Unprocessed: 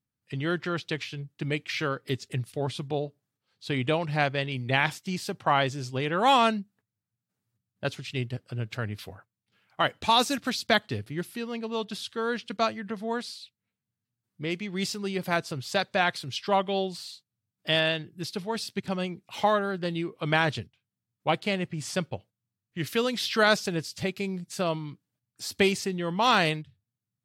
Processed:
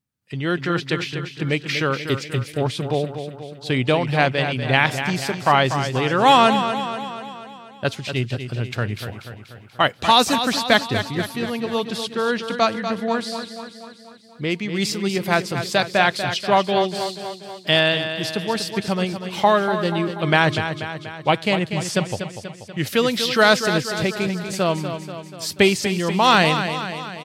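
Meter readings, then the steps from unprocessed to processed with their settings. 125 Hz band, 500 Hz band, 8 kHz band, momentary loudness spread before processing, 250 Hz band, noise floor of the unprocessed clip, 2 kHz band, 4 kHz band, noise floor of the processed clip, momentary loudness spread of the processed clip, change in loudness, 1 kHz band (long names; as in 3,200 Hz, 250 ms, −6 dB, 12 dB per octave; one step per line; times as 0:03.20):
+8.0 dB, +8.0 dB, +8.0 dB, 13 LU, +8.0 dB, below −85 dBFS, +8.0 dB, +8.0 dB, −43 dBFS, 14 LU, +7.5 dB, +8.0 dB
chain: on a send: repeating echo 242 ms, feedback 57%, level −9 dB
on the sum: automatic gain control gain up to 4 dB
level +3.5 dB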